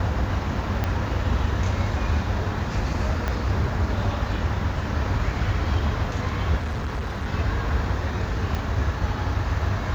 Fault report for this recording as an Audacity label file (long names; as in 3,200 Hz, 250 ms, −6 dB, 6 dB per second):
0.840000	0.840000	click −11 dBFS
3.280000	3.280000	click −13 dBFS
6.570000	7.260000	clipping −24 dBFS
8.550000	8.550000	click −15 dBFS